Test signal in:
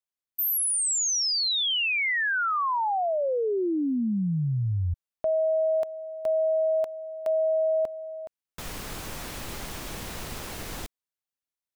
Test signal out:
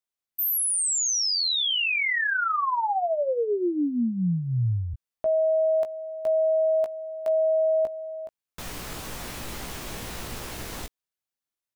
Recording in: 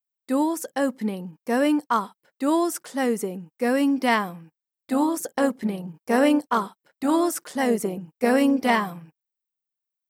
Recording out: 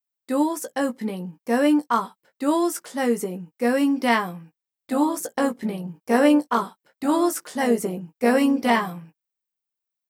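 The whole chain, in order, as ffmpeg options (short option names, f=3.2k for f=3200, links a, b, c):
-filter_complex "[0:a]asplit=2[a][b];[b]adelay=17,volume=-7dB[c];[a][c]amix=inputs=2:normalize=0"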